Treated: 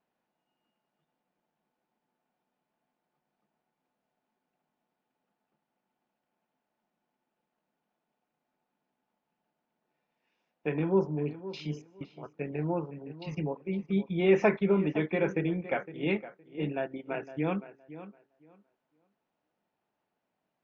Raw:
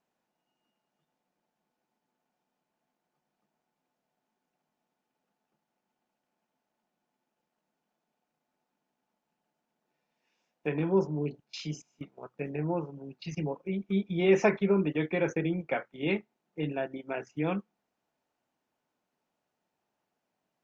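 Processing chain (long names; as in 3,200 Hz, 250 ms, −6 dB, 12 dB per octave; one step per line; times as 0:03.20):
low-pass filter 3,600 Hz 12 dB per octave
tape delay 513 ms, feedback 21%, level −13.5 dB, low-pass 2,500 Hz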